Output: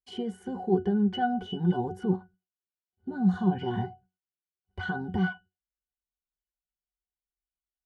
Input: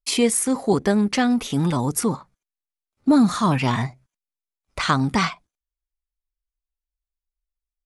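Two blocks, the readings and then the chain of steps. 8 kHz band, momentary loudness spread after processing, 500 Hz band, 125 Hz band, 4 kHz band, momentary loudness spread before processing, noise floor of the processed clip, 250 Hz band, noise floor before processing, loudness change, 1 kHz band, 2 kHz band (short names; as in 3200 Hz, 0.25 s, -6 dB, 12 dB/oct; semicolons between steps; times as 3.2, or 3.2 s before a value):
under -35 dB, 13 LU, -7.5 dB, -6.0 dB, -14.0 dB, 9 LU, under -85 dBFS, -8.0 dB, under -85 dBFS, -8.5 dB, -8.5 dB, -9.0 dB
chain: dynamic EQ 490 Hz, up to +4 dB, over -32 dBFS, Q 0.76; limiter -14.5 dBFS, peak gain reduction 10 dB; octave resonator F#, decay 0.18 s; gain +8 dB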